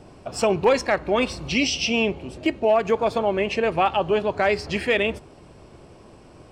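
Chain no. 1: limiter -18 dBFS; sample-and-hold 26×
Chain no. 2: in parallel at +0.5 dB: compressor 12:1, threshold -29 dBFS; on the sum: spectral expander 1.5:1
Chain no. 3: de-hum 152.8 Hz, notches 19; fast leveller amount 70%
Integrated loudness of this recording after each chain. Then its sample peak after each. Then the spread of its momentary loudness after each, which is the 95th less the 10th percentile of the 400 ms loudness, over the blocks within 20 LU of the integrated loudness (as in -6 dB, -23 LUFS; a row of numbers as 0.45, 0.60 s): -28.0, -22.0, -18.5 LUFS; -18.0, -7.0, -5.0 dBFS; 16, 8, 9 LU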